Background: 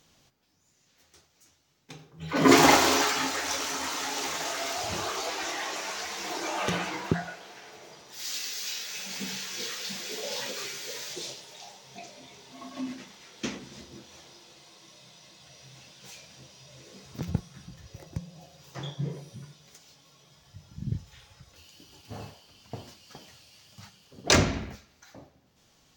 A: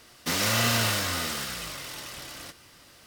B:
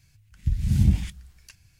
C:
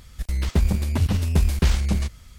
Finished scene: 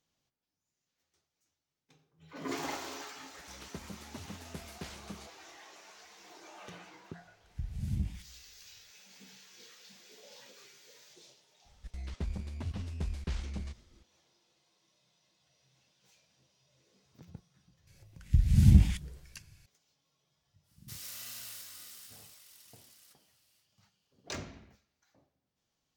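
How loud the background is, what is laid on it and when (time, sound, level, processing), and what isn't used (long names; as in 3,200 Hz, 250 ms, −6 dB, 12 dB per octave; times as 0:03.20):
background −20 dB
0:03.19: mix in C −17.5 dB + high-pass filter 180 Hz
0:07.12: mix in B −14.5 dB
0:11.65: mix in C −17 dB + low-pass filter 7,100 Hz
0:17.87: mix in B −0.5 dB
0:20.62: mix in A −15.5 dB, fades 0.10 s + first-order pre-emphasis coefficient 0.9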